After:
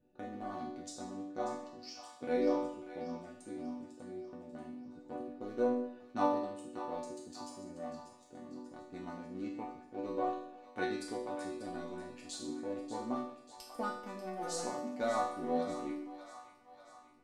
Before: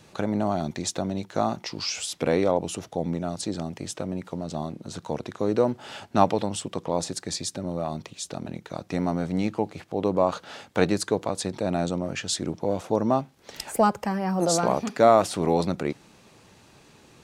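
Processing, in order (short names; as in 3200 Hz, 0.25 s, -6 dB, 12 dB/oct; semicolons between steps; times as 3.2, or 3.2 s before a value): Wiener smoothing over 41 samples; resonator bank B3 minor, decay 0.67 s; split-band echo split 680 Hz, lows 88 ms, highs 0.59 s, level -11 dB; gain +10.5 dB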